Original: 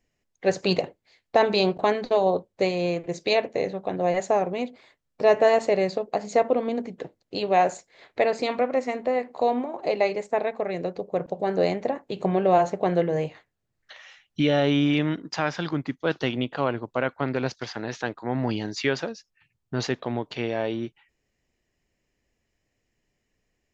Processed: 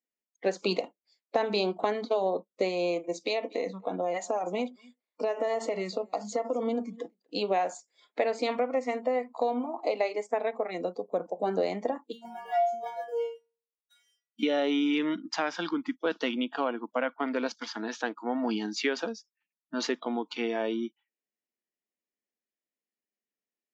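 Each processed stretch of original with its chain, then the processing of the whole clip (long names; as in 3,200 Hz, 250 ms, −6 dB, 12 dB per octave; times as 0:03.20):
0:03.21–0:07.44: downward compressor 10 to 1, threshold −22 dBFS + single-tap delay 243 ms −18 dB
0:12.12–0:14.43: parametric band 760 Hz +6.5 dB 0.38 octaves + leveller curve on the samples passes 2 + stiff-string resonator 230 Hz, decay 0.51 s, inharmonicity 0.002
whole clip: noise reduction from a noise print of the clip's start 20 dB; elliptic high-pass filter 200 Hz, stop band 40 dB; downward compressor 4 to 1, threshold −24 dBFS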